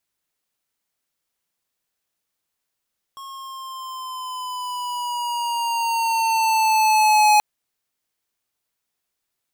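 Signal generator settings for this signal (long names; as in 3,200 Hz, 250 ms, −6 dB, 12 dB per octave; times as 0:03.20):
pitch glide with a swell square, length 4.23 s, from 1,090 Hz, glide −4.5 semitones, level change +23 dB, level −13.5 dB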